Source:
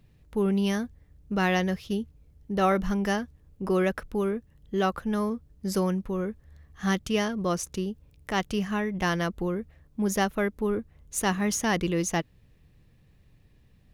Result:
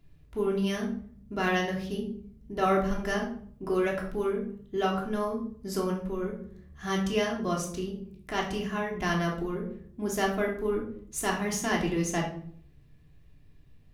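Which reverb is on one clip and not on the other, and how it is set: simulated room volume 740 m³, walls furnished, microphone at 3.1 m; trim -6 dB

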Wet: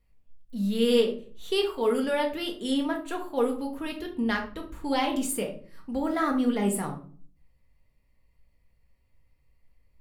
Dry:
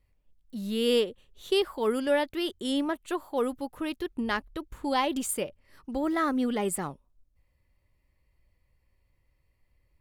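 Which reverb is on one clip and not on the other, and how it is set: simulated room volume 380 m³, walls furnished, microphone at 1.7 m; trim -1.5 dB

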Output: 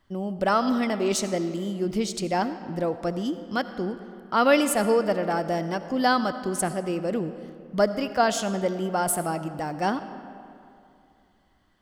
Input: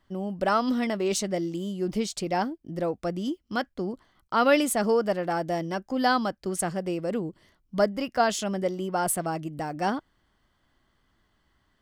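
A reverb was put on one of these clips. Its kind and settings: algorithmic reverb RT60 2.6 s, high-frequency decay 0.6×, pre-delay 35 ms, DRR 11 dB; trim +1.5 dB

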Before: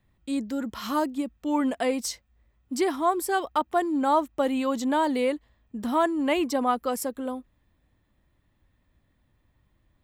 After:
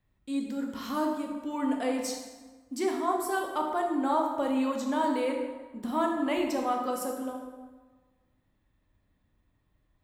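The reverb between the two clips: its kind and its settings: plate-style reverb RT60 1.4 s, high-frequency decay 0.65×, DRR 0.5 dB; trim -7 dB

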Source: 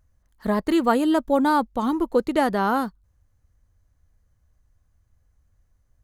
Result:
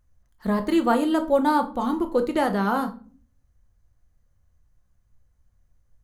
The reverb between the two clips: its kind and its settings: simulated room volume 320 m³, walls furnished, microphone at 0.91 m; trim -2.5 dB

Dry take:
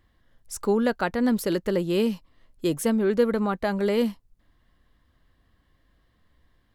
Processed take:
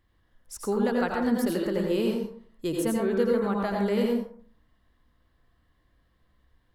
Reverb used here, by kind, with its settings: plate-style reverb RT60 0.54 s, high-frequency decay 0.45×, pre-delay 75 ms, DRR -0.5 dB; trim -5.5 dB

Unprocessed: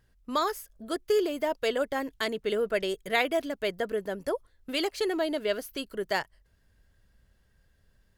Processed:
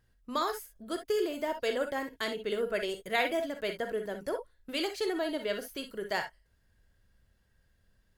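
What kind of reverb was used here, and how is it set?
gated-style reverb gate 80 ms rising, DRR 5.5 dB; trim -4 dB

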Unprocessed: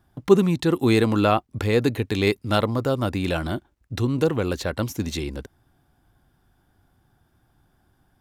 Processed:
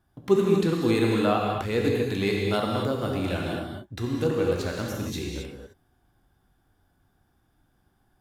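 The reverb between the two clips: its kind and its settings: gated-style reverb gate 290 ms flat, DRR -1.5 dB; trim -7 dB

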